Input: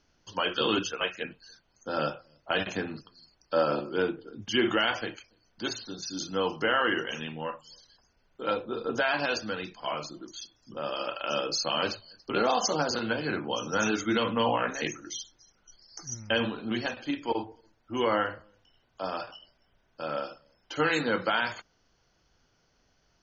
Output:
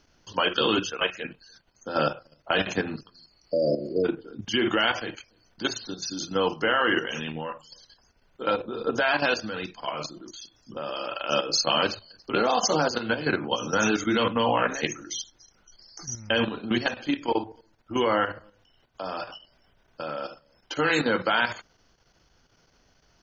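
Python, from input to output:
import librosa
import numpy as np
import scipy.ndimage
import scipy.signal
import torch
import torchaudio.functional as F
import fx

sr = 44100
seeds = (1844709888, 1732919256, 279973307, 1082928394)

y = fx.spec_repair(x, sr, seeds[0], start_s=3.38, length_s=0.64, low_hz=690.0, high_hz=4600.0, source='before')
y = fx.level_steps(y, sr, step_db=10)
y = y * 10.0 ** (7.5 / 20.0)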